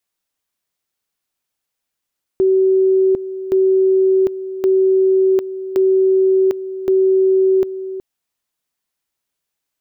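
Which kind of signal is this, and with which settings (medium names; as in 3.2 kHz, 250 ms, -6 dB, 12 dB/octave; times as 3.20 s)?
two-level tone 380 Hz -10 dBFS, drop 13 dB, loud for 0.75 s, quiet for 0.37 s, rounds 5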